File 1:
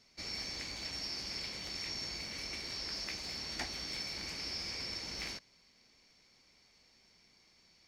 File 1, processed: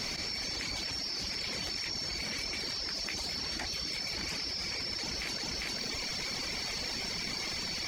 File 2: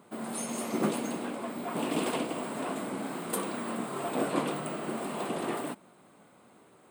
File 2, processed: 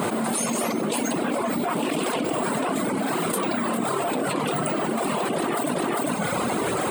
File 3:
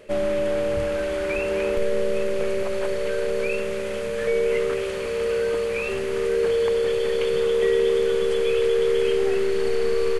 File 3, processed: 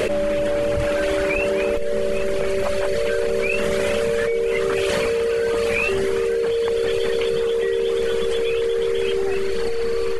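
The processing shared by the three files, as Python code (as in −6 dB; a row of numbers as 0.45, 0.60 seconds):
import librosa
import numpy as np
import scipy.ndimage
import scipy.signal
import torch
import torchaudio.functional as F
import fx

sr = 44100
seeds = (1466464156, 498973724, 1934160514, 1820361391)

y = fx.dereverb_blind(x, sr, rt60_s=1.2)
y = y + 10.0 ** (-17.5 / 20.0) * np.pad(y, (int(400 * sr / 1000.0), 0))[:len(y)]
y = fx.env_flatten(y, sr, amount_pct=100)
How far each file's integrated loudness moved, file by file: +5.5, +8.5, +2.0 LU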